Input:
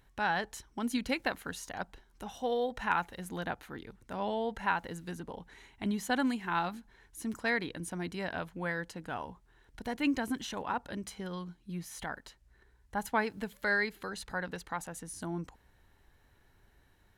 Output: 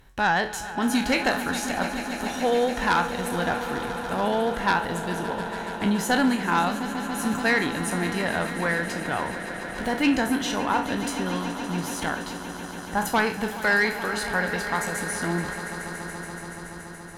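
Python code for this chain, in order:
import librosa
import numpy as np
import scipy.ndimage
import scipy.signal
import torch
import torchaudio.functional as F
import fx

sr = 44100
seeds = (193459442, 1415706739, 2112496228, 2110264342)

y = fx.spec_trails(x, sr, decay_s=0.31)
y = fx.fold_sine(y, sr, drive_db=7, ceiling_db=-13.0)
y = fx.echo_swell(y, sr, ms=142, loudest=5, wet_db=-14.5)
y = y * 10.0 ** (-1.5 / 20.0)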